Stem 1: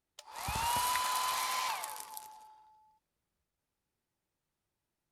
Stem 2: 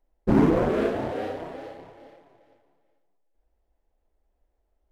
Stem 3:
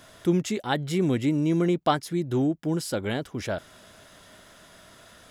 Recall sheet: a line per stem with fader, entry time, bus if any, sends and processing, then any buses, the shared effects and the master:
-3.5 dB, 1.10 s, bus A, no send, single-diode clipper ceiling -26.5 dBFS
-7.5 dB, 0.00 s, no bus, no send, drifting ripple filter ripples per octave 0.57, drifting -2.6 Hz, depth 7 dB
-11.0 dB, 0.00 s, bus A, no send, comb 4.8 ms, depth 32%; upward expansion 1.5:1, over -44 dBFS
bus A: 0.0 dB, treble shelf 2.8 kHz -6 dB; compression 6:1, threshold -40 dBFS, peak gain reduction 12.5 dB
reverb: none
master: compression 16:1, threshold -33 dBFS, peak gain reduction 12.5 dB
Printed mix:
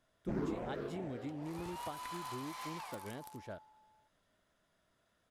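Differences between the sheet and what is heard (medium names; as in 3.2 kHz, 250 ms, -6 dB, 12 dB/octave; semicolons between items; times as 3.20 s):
stem 2 -7.5 dB -> -19.0 dB; stem 3: missing comb 4.8 ms, depth 32%; master: missing compression 16:1, threshold -33 dBFS, peak gain reduction 12.5 dB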